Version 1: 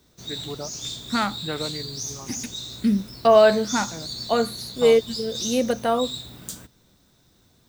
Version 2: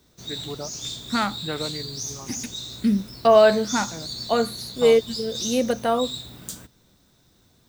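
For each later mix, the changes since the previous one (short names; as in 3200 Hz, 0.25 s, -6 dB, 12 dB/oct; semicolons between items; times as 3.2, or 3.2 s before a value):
none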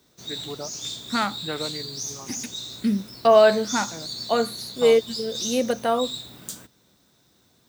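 master: add HPF 180 Hz 6 dB/oct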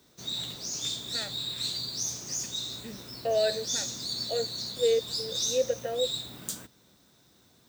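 first voice: muted; second voice: add vowel filter e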